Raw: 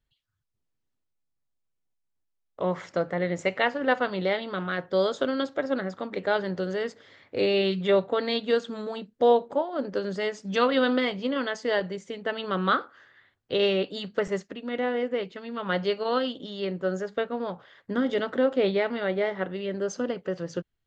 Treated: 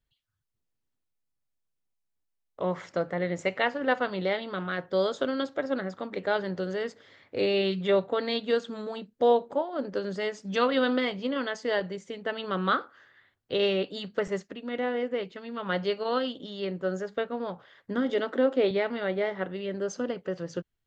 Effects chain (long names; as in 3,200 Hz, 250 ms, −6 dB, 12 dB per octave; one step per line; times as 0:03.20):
0:18.10–0:18.71: low shelf with overshoot 190 Hz −11 dB, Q 1.5
level −2 dB